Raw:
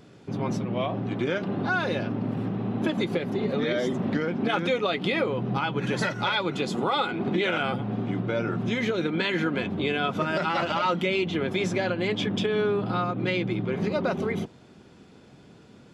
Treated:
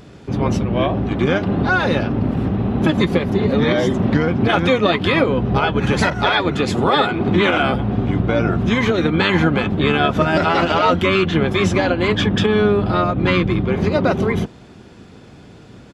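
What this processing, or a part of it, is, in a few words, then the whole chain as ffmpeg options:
octave pedal: -filter_complex "[0:a]asplit=2[s0][s1];[s1]asetrate=22050,aresample=44100,atempo=2,volume=0.631[s2];[s0][s2]amix=inputs=2:normalize=0,asettb=1/sr,asplit=3[s3][s4][s5];[s3]atrim=end=6.104[s6];[s4]atrim=start=6.1:end=6.65,asetpts=PTS-STARTPTS,afade=t=in:d=0.004:c=qsin,afade=t=out:st=0.546:d=0.004:c=qsin,adynamicequalizer=threshold=0.0126:dfrequency=2100:dqfactor=0.7:tfrequency=2100:tqfactor=0.7:attack=5:release=100:ratio=0.375:range=2:mode=cutabove:tftype=highshelf[s7];[s5]atrim=start=6.646[s8];[s6][s7]acrossfade=d=0.004:c1=hsin:c2=qsin[s9];[s9][s8]acrossfade=d=0.004:c1=qsin:c2=hsin,volume=2.66"

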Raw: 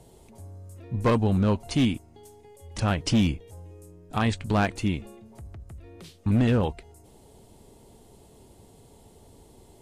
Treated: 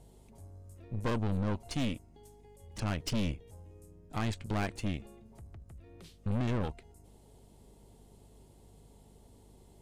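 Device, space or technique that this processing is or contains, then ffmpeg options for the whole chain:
valve amplifier with mains hum: -af "aeval=exprs='(tanh(17.8*val(0)+0.75)-tanh(0.75))/17.8':c=same,aeval=exprs='val(0)+0.00178*(sin(2*PI*50*n/s)+sin(2*PI*2*50*n/s)/2+sin(2*PI*3*50*n/s)/3+sin(2*PI*4*50*n/s)/4+sin(2*PI*5*50*n/s)/5)':c=same,volume=0.668"

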